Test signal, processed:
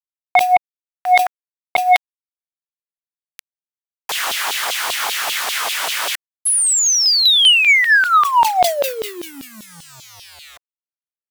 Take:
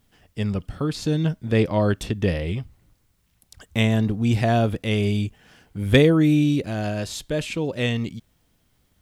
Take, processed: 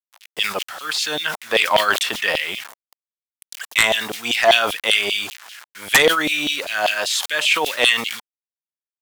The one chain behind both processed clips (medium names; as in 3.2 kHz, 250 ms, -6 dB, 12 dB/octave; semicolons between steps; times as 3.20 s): dynamic bell 3.2 kHz, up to +3 dB, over -45 dBFS, Q 4; word length cut 8-bit, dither none; LFO high-pass saw down 5.1 Hz 660–3500 Hz; sine folder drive 12 dB, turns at -1 dBFS; decay stretcher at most 100 dB/s; trim -5.5 dB